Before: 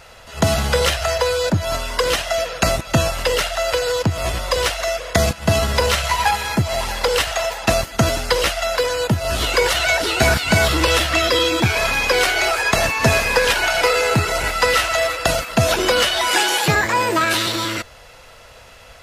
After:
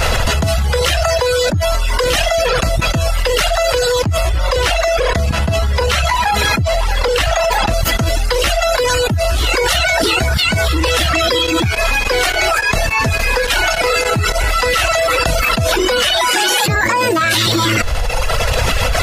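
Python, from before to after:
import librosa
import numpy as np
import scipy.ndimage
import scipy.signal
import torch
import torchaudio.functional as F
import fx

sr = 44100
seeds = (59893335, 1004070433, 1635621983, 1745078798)

y = fx.high_shelf(x, sr, hz=5500.0, db=-6.5, at=(4.29, 7.74))
y = fx.tremolo_abs(y, sr, hz=3.5, at=(11.33, 14.48))
y = fx.dereverb_blind(y, sr, rt60_s=1.1)
y = fx.low_shelf(y, sr, hz=130.0, db=11.5)
y = fx.env_flatten(y, sr, amount_pct=100)
y = y * 10.0 ** (-7.5 / 20.0)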